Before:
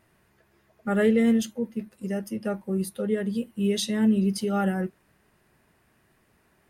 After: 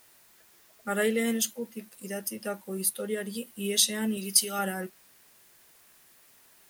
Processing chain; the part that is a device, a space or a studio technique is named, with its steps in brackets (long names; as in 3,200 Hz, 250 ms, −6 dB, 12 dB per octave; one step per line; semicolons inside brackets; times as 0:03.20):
turntable without a phono preamp (RIAA equalisation recording; white noise bed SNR 29 dB)
0:04.17–0:04.59: tilt shelving filter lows −5 dB, about 1,400 Hz
level −1.5 dB